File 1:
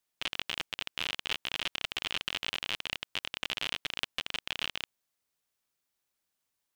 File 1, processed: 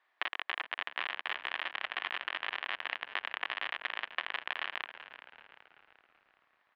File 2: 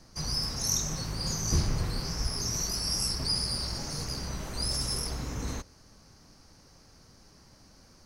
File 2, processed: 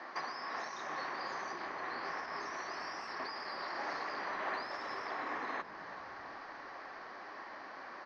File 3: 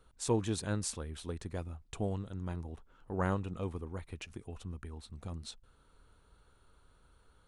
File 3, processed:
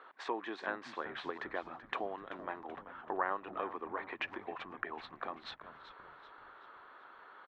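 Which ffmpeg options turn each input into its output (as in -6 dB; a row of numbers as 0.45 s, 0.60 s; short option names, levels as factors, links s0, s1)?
-filter_complex "[0:a]alimiter=limit=0.0891:level=0:latency=1:release=14,acompressor=threshold=0.00708:ratio=6,highpass=f=370:w=0.5412,highpass=f=370:w=1.3066,equalizer=f=470:t=q:w=4:g=-7,equalizer=f=750:t=q:w=4:g=4,equalizer=f=1100:t=q:w=4:g=7,equalizer=f=1800:t=q:w=4:g=9,equalizer=f=2800:t=q:w=4:g=-4,lowpass=f=3000:w=0.5412,lowpass=f=3000:w=1.3066,asplit=6[s0][s1][s2][s3][s4][s5];[s1]adelay=383,afreqshift=-93,volume=0.224[s6];[s2]adelay=766,afreqshift=-186,volume=0.105[s7];[s3]adelay=1149,afreqshift=-279,volume=0.0495[s8];[s4]adelay=1532,afreqshift=-372,volume=0.0232[s9];[s5]adelay=1915,afreqshift=-465,volume=0.011[s10];[s0][s6][s7][s8][s9][s10]amix=inputs=6:normalize=0,volume=4.47"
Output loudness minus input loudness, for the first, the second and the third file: -2.0 LU, -10.5 LU, -2.5 LU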